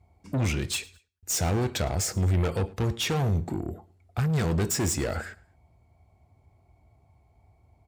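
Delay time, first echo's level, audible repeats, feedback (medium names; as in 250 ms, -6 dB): 108 ms, -23.0 dB, 2, 35%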